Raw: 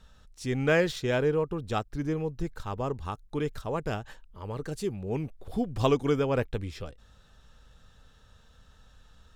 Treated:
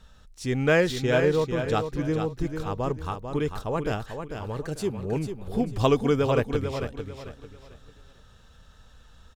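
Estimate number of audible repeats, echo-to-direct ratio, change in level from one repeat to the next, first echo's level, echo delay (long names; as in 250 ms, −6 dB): 3, −7.0 dB, −10.5 dB, −7.5 dB, 445 ms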